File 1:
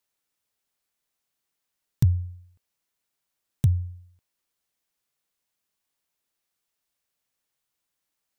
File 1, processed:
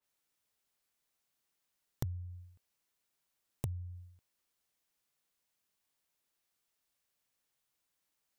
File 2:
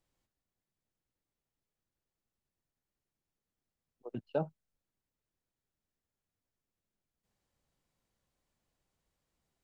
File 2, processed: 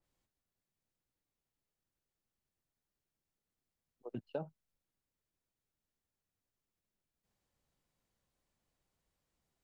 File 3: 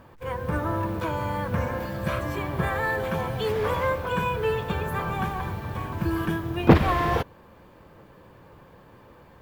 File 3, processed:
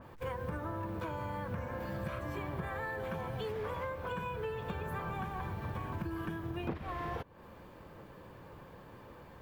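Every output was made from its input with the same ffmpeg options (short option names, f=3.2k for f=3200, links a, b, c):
-af "acompressor=threshold=-33dB:ratio=16,adynamicequalizer=threshold=0.00141:dfrequency=3000:dqfactor=0.7:tfrequency=3000:tqfactor=0.7:attack=5:release=100:ratio=0.375:range=2:mode=cutabove:tftype=highshelf,volume=-1.5dB"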